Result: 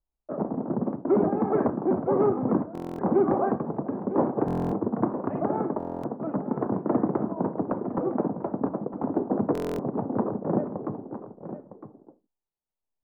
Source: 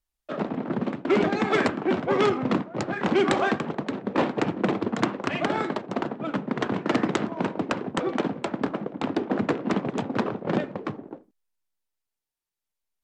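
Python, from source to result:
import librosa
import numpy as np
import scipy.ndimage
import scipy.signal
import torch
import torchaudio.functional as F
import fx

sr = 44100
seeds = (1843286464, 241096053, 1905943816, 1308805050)

y = scipy.signal.sosfilt(scipy.signal.butter(4, 1000.0, 'lowpass', fs=sr, output='sos'), x)
y = y + 10.0 ** (-12.0 / 20.0) * np.pad(y, (int(958 * sr / 1000.0), 0))[:len(y)]
y = fx.buffer_glitch(y, sr, at_s=(2.73, 4.46, 5.78, 9.53), block=1024, repeats=10)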